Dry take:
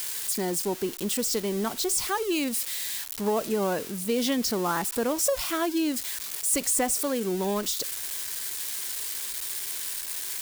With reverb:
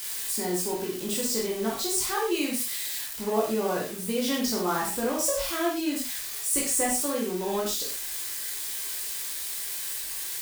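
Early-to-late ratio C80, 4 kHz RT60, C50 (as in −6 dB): 8.5 dB, can't be measured, 3.5 dB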